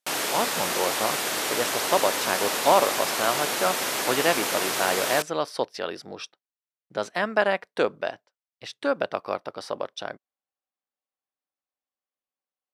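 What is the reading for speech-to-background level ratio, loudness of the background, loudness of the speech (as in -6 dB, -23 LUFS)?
-2.0 dB, -25.5 LUFS, -27.5 LUFS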